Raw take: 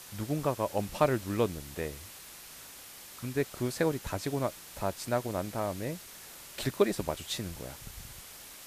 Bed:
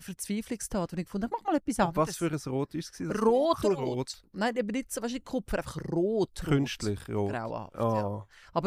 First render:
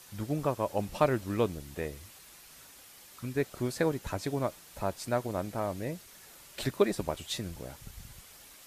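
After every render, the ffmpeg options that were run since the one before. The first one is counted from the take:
-af "afftdn=nr=6:nf=-49"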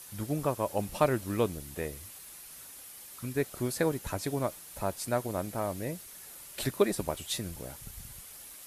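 -af "equalizer=f=11000:t=o:w=0.71:g=10"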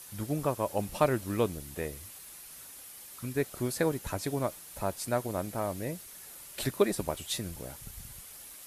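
-af anull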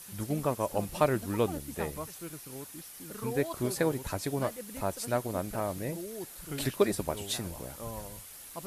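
-filter_complex "[1:a]volume=0.211[s0];[0:a][s0]amix=inputs=2:normalize=0"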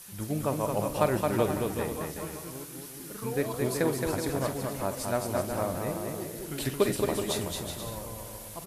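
-filter_complex "[0:a]asplit=2[s0][s1];[s1]adelay=46,volume=0.237[s2];[s0][s2]amix=inputs=2:normalize=0,aecho=1:1:220|374|481.8|557.3|610.1:0.631|0.398|0.251|0.158|0.1"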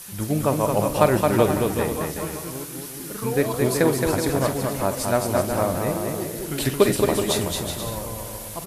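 -af "volume=2.51"

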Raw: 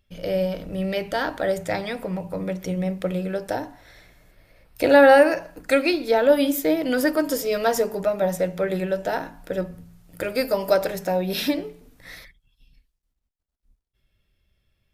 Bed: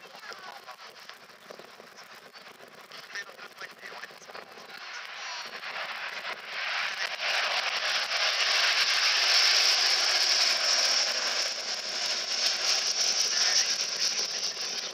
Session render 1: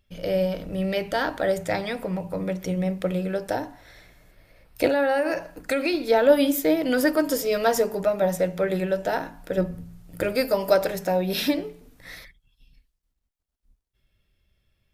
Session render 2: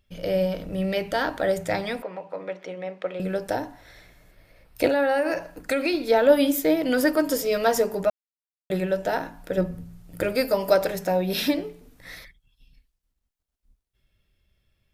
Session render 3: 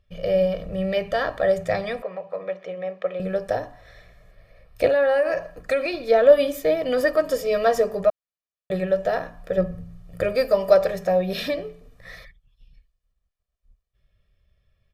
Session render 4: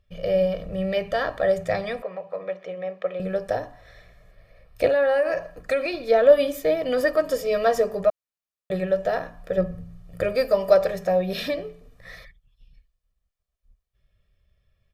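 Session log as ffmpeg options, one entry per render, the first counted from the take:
-filter_complex "[0:a]asettb=1/sr,asplit=3[s0][s1][s2];[s0]atrim=end=4.874[s3];[s1]atrim=start=4.87:end=5.95,asetpts=PTS-STARTPTS,afade=t=in:d=0.004:c=qsin,afade=t=out:st=1.076:d=0.004:c=qsin,acompressor=threshold=0.112:ratio=6:attack=3.2:release=140:knee=1:detection=peak[s4];[s2]atrim=start=5.946[s5];[s3][s4]acrossfade=d=0.004:c1=hsin:c2=qsin[s6];[s6][s5]acrossfade=d=0.004:c1=qsin:c2=hsin,asettb=1/sr,asplit=3[s7][s8][s9];[s7]atrim=end=9.574[s10];[s8]atrim=start=9.57:end=10.36,asetpts=PTS-STARTPTS,afade=t=in:d=0.004:c=qsin,afade=t=out:st=0.786:d=0.004:c=qsin,lowshelf=f=460:g=5.5[s11];[s9]atrim=start=10.356[s12];[s10][s11]acrossfade=d=0.004:c1=hsin:c2=qsin[s13];[s13][s12]acrossfade=d=0.004:c1=qsin:c2=hsin"
-filter_complex "[0:a]asettb=1/sr,asplit=3[s0][s1][s2];[s0]atrim=end=2.024[s3];[s1]atrim=start=2.02:end=3.2,asetpts=PTS-STARTPTS,afade=t=in:d=0.004:c=qsin,afade=t=out:st=1.176:d=0.004:c=qsin,highpass=490,lowpass=3100[s4];[s2]atrim=start=3.196[s5];[s3][s4]acrossfade=d=0.004:c1=hsin:c2=qsin[s6];[s6][s5]acrossfade=d=0.004:c1=qsin:c2=hsin,asplit=3[s7][s8][s9];[s7]atrim=end=8.1,asetpts=PTS-STARTPTS,afade=t=out:st=8.096:d=0.004:c=hsin[s10];[s8]atrim=start=8.1:end=8.7,asetpts=PTS-STARTPTS,volume=0[s11];[s9]atrim=start=8.7,asetpts=PTS-STARTPTS,afade=t=in:d=0.004:c=hsin[s12];[s10][s11][s12]concat=n=3:v=0:a=1"
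-af "lowpass=f=2800:p=1,aecho=1:1:1.7:0.68"
-af "volume=0.891"

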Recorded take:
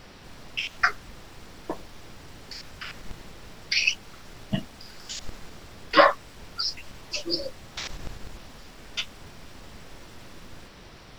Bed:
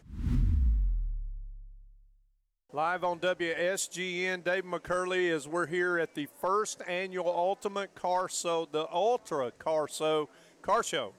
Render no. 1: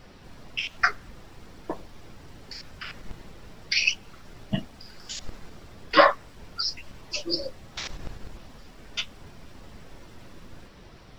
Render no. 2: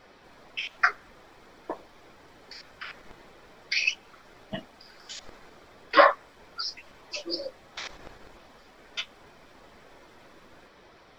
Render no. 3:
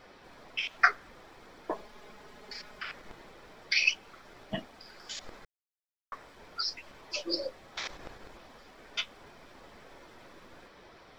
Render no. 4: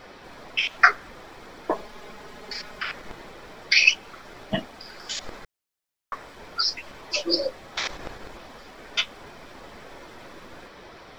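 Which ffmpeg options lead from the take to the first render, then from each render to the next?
-af "afftdn=nr=6:nf=-48"
-af "bass=f=250:g=-15,treble=f=4000:g=-7,bandreject=f=2800:w=13"
-filter_complex "[0:a]asettb=1/sr,asplit=3[s0][s1][s2];[s0]atrim=end=1.714[s3];[s1]atrim=start=1.71:end=2.82,asetpts=PTS-STARTPTS,afade=t=in:d=0.004:c=qsin,afade=t=out:st=1.106:d=0.004:c=qsin,aecho=1:1:4.8:0.65,atrim=end_sample=48951[s4];[s2]atrim=start=2.816[s5];[s3][s4]acrossfade=d=0.004:c1=hsin:c2=qsin[s6];[s6][s5]acrossfade=d=0.004:c1=qsin:c2=hsin,asplit=3[s7][s8][s9];[s7]atrim=end=5.45,asetpts=PTS-STARTPTS,afade=t=out:st=5.446:d=0.004:c=hsin[s10];[s8]atrim=start=5.45:end=6.12,asetpts=PTS-STARTPTS,volume=0[s11];[s9]atrim=start=6.12,asetpts=PTS-STARTPTS,afade=t=in:d=0.004:c=hsin[s12];[s10][s11][s12]concat=n=3:v=0:a=1"
-af "volume=2.82,alimiter=limit=0.891:level=0:latency=1"

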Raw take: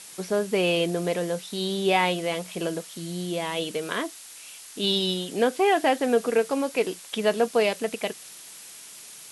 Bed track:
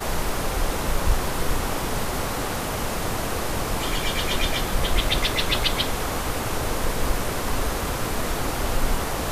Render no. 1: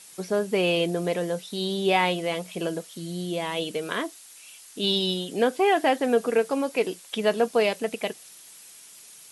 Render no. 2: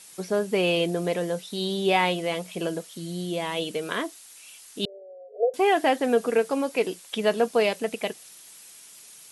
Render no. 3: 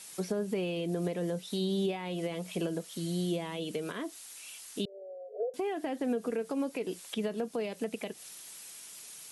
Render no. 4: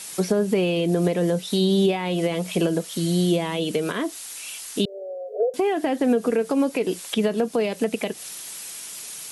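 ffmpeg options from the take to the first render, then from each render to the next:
-af "afftdn=nr=6:nf=-45"
-filter_complex "[0:a]asettb=1/sr,asplit=3[s0][s1][s2];[s0]atrim=end=4.854[s3];[s1]atrim=start=4.85:end=5.54,asetpts=PTS-STARTPTS,afade=t=in:d=0.004:c=qsin,afade=t=out:st=0.686:d=0.004:c=qsin,asuperpass=centerf=550:order=20:qfactor=1.8[s4];[s2]atrim=start=5.536[s5];[s3][s4]acrossfade=d=0.004:c1=hsin:c2=qsin[s6];[s6][s5]acrossfade=d=0.004:c1=qsin:c2=hsin"
-filter_complex "[0:a]alimiter=limit=0.106:level=0:latency=1:release=167,acrossover=split=380[s0][s1];[s1]acompressor=threshold=0.0126:ratio=6[s2];[s0][s2]amix=inputs=2:normalize=0"
-af "volume=3.76"

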